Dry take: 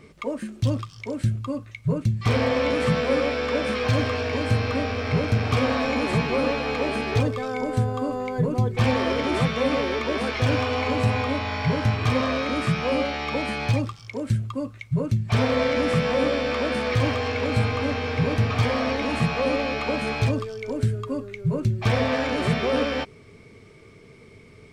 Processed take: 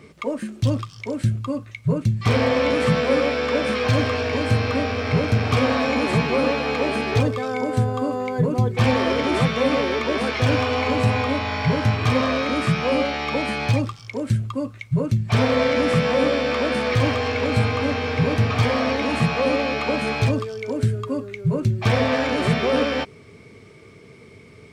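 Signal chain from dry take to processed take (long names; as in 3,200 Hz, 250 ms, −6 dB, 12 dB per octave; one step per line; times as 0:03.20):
high-pass filter 72 Hz
level +3 dB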